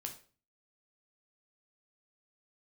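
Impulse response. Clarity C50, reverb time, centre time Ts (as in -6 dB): 10.5 dB, 0.40 s, 13 ms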